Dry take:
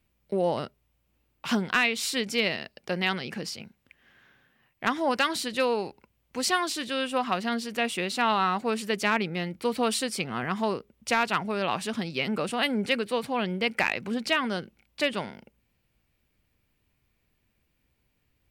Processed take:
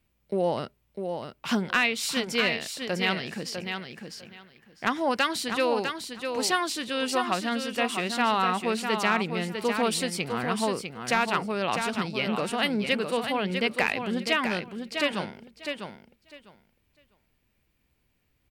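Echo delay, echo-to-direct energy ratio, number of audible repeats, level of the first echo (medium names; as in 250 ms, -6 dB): 651 ms, -6.5 dB, 2, -6.5 dB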